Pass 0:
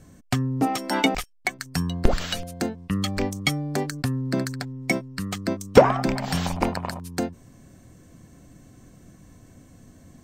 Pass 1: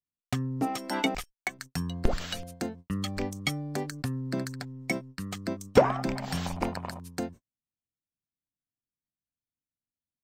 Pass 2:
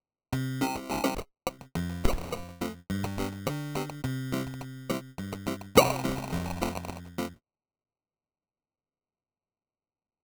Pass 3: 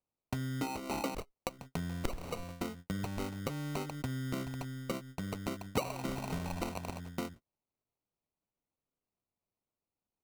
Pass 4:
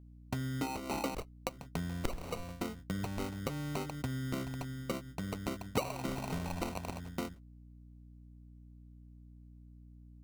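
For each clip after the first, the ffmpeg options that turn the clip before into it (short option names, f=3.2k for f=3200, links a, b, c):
-af "agate=range=-47dB:threshold=-37dB:ratio=16:detection=peak,volume=-6.5dB"
-af "acrusher=samples=26:mix=1:aa=0.000001"
-af "acompressor=threshold=-35dB:ratio=3"
-af "aeval=exprs='val(0)+0.00224*(sin(2*PI*60*n/s)+sin(2*PI*2*60*n/s)/2+sin(2*PI*3*60*n/s)/3+sin(2*PI*4*60*n/s)/4+sin(2*PI*5*60*n/s)/5)':c=same"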